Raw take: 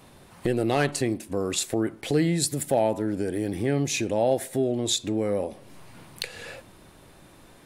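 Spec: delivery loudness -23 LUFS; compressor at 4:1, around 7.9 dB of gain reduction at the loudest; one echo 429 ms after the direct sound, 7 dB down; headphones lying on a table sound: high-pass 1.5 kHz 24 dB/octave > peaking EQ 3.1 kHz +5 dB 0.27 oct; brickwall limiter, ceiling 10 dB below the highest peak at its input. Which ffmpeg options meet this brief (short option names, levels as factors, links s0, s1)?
-af "acompressor=threshold=0.0447:ratio=4,alimiter=limit=0.0708:level=0:latency=1,highpass=f=1500:w=0.5412,highpass=f=1500:w=1.3066,equalizer=f=3100:t=o:w=0.27:g=5,aecho=1:1:429:0.447,volume=5.96"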